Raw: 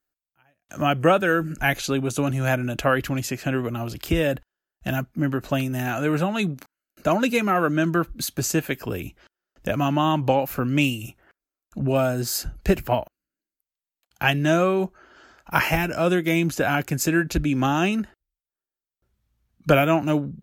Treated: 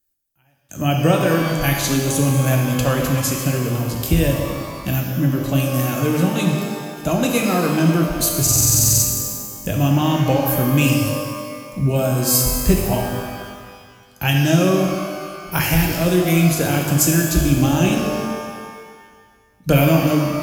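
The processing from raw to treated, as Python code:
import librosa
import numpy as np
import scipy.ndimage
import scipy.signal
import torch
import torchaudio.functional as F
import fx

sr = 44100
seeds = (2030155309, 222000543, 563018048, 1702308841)

y = fx.curve_eq(x, sr, hz=(100.0, 1400.0, 9700.0), db=(0, -13, 4))
y = fx.buffer_glitch(y, sr, at_s=(8.42,), block=2048, repeats=12)
y = fx.rev_shimmer(y, sr, seeds[0], rt60_s=1.8, semitones=12, shimmer_db=-8, drr_db=0.5)
y = F.gain(torch.from_numpy(y), 7.0).numpy()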